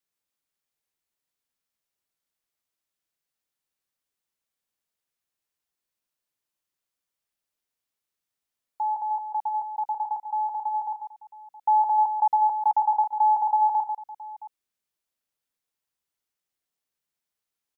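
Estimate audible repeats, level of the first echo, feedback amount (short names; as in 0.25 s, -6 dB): 3, -9.0 dB, no steady repeat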